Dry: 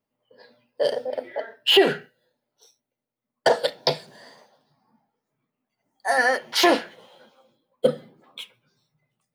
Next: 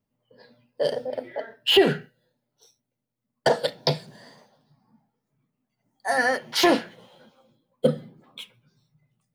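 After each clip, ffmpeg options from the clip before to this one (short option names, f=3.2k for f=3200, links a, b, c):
-af "bass=f=250:g=12,treble=f=4k:g=1,volume=-2.5dB"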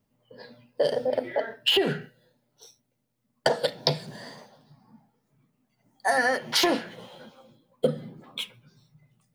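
-af "acompressor=threshold=-27dB:ratio=6,volume=6.5dB"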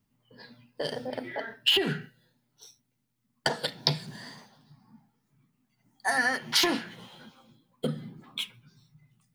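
-af "equalizer=f=550:w=1.7:g=-12"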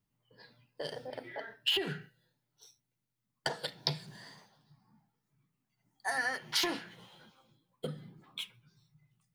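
-af "equalizer=f=240:w=6.7:g=-12.5,volume=-7dB"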